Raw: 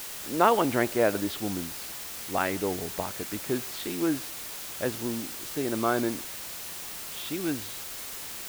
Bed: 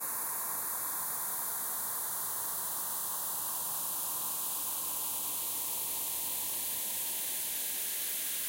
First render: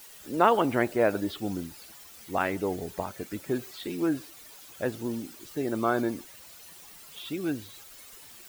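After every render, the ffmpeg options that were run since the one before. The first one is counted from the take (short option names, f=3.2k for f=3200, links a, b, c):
-af "afftdn=nr=13:nf=-39"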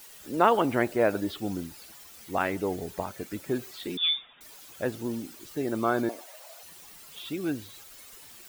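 -filter_complex "[0:a]asettb=1/sr,asplit=3[a][b][c];[a]atrim=end=3.974[d];[b]atrim=start=3.97:end=4.41,asetpts=PTS-STARTPTS,afade=t=in:d=0.004:c=qsin,afade=t=out:st=0.436:d=0.004:c=qsin,lowpass=f=3.2k:t=q:w=0.5098,lowpass=f=3.2k:t=q:w=0.6013,lowpass=f=3.2k:t=q:w=0.9,lowpass=f=3.2k:t=q:w=2.563,afreqshift=-3800[e];[c]atrim=start=4.406[f];[d][e]acrossfade=d=0.004:c1=hsin:c2=qsin[g];[g][f]acrossfade=d=0.004:c1=qsin:c2=hsin,asettb=1/sr,asplit=3[h][i][j];[h]atrim=end=6.094[k];[i]atrim=start=6.09:end=6.63,asetpts=PTS-STARTPTS,afade=t=in:d=0.004:c=qsin,afade=t=out:st=0.536:d=0.004:c=qsin,highpass=f=640:t=q:w=6.4[l];[j]atrim=start=6.626[m];[k][l]acrossfade=d=0.004:c1=hsin:c2=qsin[n];[n][m]acrossfade=d=0.004:c1=qsin:c2=hsin"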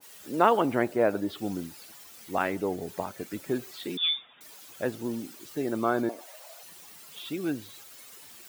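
-af "highpass=110,adynamicequalizer=threshold=0.01:dfrequency=1500:dqfactor=0.7:tfrequency=1500:tqfactor=0.7:attack=5:release=100:ratio=0.375:range=3:mode=cutabove:tftype=highshelf"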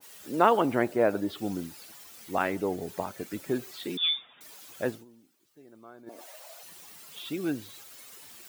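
-filter_complex "[0:a]asplit=3[a][b][c];[a]atrim=end=5.05,asetpts=PTS-STARTPTS,afade=t=out:st=4.89:d=0.16:silence=0.0668344[d];[b]atrim=start=5.05:end=6.06,asetpts=PTS-STARTPTS,volume=-23.5dB[e];[c]atrim=start=6.06,asetpts=PTS-STARTPTS,afade=t=in:d=0.16:silence=0.0668344[f];[d][e][f]concat=n=3:v=0:a=1"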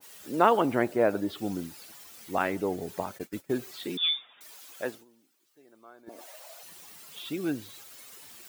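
-filter_complex "[0:a]asplit=3[a][b][c];[a]afade=t=out:st=3.17:d=0.02[d];[b]agate=range=-33dB:threshold=-36dB:ratio=3:release=100:detection=peak,afade=t=in:st=3.17:d=0.02,afade=t=out:st=3.59:d=0.02[e];[c]afade=t=in:st=3.59:d=0.02[f];[d][e][f]amix=inputs=3:normalize=0,asettb=1/sr,asplit=3[g][h][i];[g]atrim=end=4.094[j];[h]atrim=start=4.09:end=6.08,asetpts=PTS-STARTPTS,afade=t=in:d=0.004:c=qsin,afade=t=out:st=1.986:d=0.004:c=qsin,highpass=f=510:p=1[k];[i]atrim=start=6.076[l];[j][k]acrossfade=d=0.004:c1=hsin:c2=qsin[m];[m][l]acrossfade=d=0.004:c1=qsin:c2=hsin"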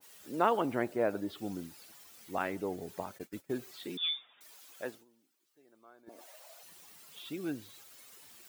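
-af "volume=-6.5dB"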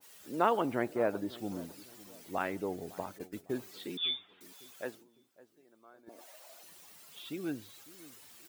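-filter_complex "[0:a]asplit=2[a][b];[b]adelay=554,lowpass=f=1.1k:p=1,volume=-18.5dB,asplit=2[c][d];[d]adelay=554,lowpass=f=1.1k:p=1,volume=0.43,asplit=2[e][f];[f]adelay=554,lowpass=f=1.1k:p=1,volume=0.43[g];[a][c][e][g]amix=inputs=4:normalize=0"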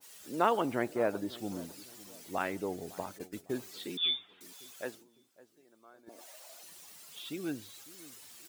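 -af "equalizer=f=7.1k:w=0.49:g=5"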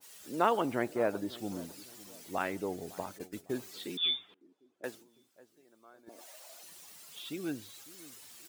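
-filter_complex "[0:a]asettb=1/sr,asplit=3[a][b][c];[a]atrim=end=4.344[d];[b]atrim=start=4.34:end=4.84,asetpts=PTS-STARTPTS,afade=t=in:d=0.004:c=qsin,afade=t=out:st=0.496:d=0.004:c=qsin,bandpass=f=310:t=q:w=3.5[e];[c]atrim=start=4.836[f];[d][e]acrossfade=d=0.004:c1=hsin:c2=qsin[g];[g][f]acrossfade=d=0.004:c1=qsin:c2=hsin"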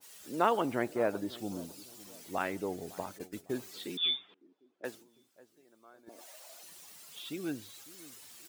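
-filter_complex "[0:a]asettb=1/sr,asplit=3[a][b][c];[a]atrim=end=1.434[d];[b]atrim=start=1.43:end=2,asetpts=PTS-STARTPTS,afade=t=in:d=0.004:c=qsin,afade=t=out:st=0.566:d=0.004:c=qsin,equalizer=f=1.8k:t=o:w=0.67:g=-8[e];[c]atrim=start=1.996[f];[d][e]acrossfade=d=0.004:c1=hsin:c2=qsin[g];[g][f]acrossfade=d=0.004:c1=qsin:c2=hsin,asettb=1/sr,asplit=3[h][i][j];[h]atrim=end=4.164[k];[i]atrim=start=4.16:end=4.85,asetpts=PTS-STARTPTS,afade=t=in:d=0.004:c=qsin,afade=t=out:st=0.686:d=0.004:c=qsin,highpass=140,lowpass=4.9k[l];[j]atrim=start=4.846[m];[k][l]acrossfade=d=0.004:c1=hsin:c2=qsin[n];[n][m]acrossfade=d=0.004:c1=qsin:c2=hsin"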